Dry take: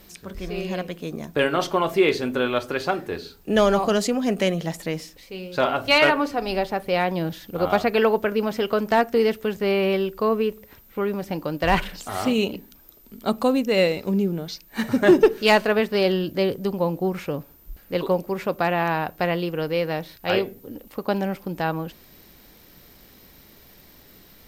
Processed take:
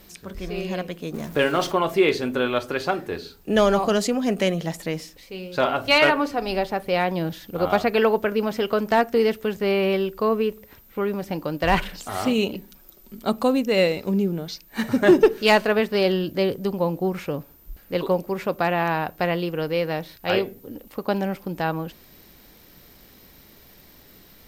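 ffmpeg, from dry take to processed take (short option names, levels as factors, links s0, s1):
-filter_complex "[0:a]asettb=1/sr,asplit=3[s0][s1][s2];[s0]atrim=end=1.144[s3];[s1]atrim=start=1.14:end=1.72,asetpts=PTS-STARTPTS,afade=t=in:d=0.004:c=qsin,afade=t=out:st=0.576:d=0.004:c=qsin,aeval=exprs='val(0)+0.5*0.0168*sgn(val(0))':c=same[s4];[s2]atrim=start=1.716[s5];[s3][s4]acrossfade=d=0.004:c1=hsin:c2=qsin[s6];[s6][s5]acrossfade=d=0.004:c1=qsin:c2=hsin,asettb=1/sr,asplit=3[s7][s8][s9];[s7]atrim=end=12.554[s10];[s8]atrim=start=12.55:end=13.22,asetpts=PTS-STARTPTS,afade=t=in:d=0.004:c=qsin,afade=t=out:st=0.666:d=0.004:c=qsin,aecho=1:1:5.4:0.65,atrim=end_sample=29547[s11];[s9]atrim=start=13.216[s12];[s10][s11]acrossfade=d=0.004:c1=hsin:c2=qsin[s13];[s13][s12]acrossfade=d=0.004:c1=qsin:c2=hsin"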